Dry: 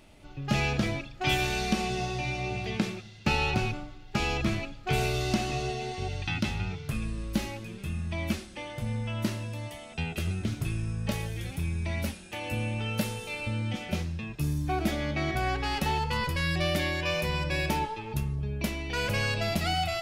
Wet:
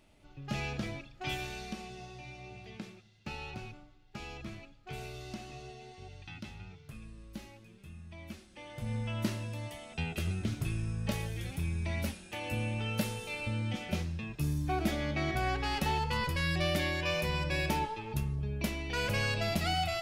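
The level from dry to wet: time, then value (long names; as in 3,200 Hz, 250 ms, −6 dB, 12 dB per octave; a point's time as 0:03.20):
0:01.19 −9 dB
0:01.93 −15.5 dB
0:08.32 −15.5 dB
0:08.95 −3 dB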